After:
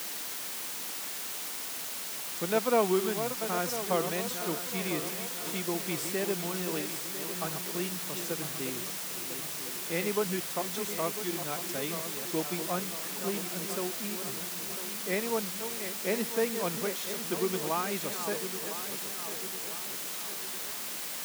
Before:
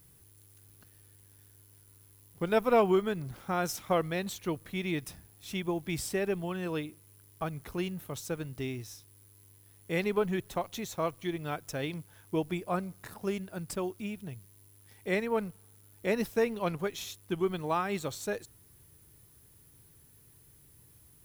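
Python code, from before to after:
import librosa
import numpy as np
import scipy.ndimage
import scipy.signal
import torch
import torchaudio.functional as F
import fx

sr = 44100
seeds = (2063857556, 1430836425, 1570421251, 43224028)

y = fx.reverse_delay_fb(x, sr, ms=500, feedback_pct=70, wet_db=-9)
y = fx.quant_dither(y, sr, seeds[0], bits=6, dither='triangular')
y = scipy.signal.sosfilt(scipy.signal.butter(4, 160.0, 'highpass', fs=sr, output='sos'), y)
y = y * librosa.db_to_amplitude(-1.5)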